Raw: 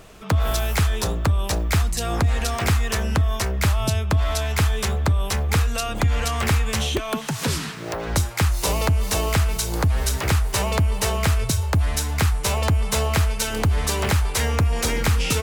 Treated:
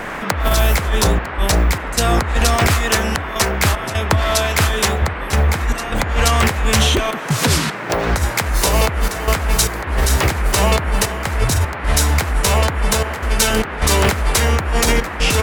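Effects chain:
0:02.67–0:05.02: low-shelf EQ 140 Hz −10.5 dB
compressor whose output falls as the input rises −22 dBFS, ratio −0.5
gate pattern "xxxxxx.xx." 76 BPM −12 dB
noise in a band 140–2,000 Hz −35 dBFS
level +7.5 dB

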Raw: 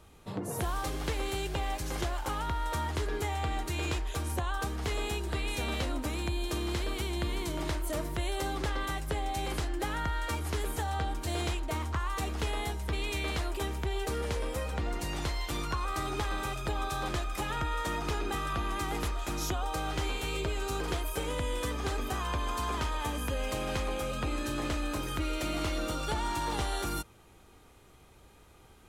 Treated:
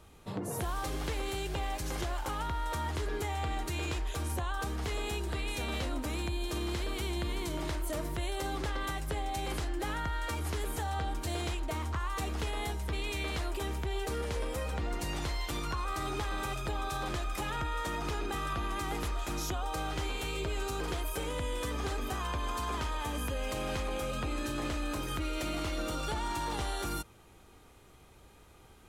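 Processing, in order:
brickwall limiter −26 dBFS, peak gain reduction 3.5 dB

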